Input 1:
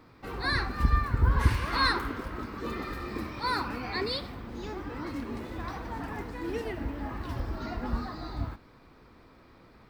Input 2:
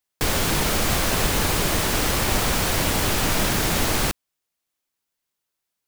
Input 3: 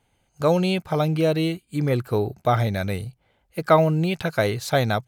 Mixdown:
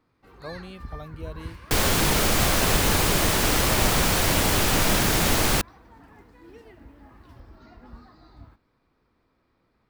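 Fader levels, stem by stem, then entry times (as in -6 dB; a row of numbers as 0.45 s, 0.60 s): -14.0 dB, +0.5 dB, -19.5 dB; 0.00 s, 1.50 s, 0.00 s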